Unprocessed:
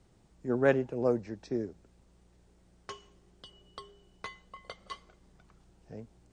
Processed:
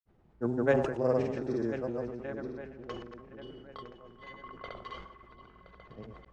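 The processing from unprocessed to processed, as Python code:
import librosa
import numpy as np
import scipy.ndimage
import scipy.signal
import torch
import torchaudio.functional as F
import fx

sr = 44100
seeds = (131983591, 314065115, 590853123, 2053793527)

p1 = fx.reverse_delay_fb(x, sr, ms=501, feedback_pct=62, wet_db=-7)
p2 = fx.env_lowpass(p1, sr, base_hz=2000.0, full_db=-25.5)
p3 = p2 + fx.echo_stepped(p2, sr, ms=138, hz=800.0, octaves=0.7, feedback_pct=70, wet_db=-9.5, dry=0)
p4 = fx.granulator(p3, sr, seeds[0], grain_ms=100.0, per_s=20.0, spray_ms=100.0, spread_st=0)
y = fx.sustainer(p4, sr, db_per_s=62.0)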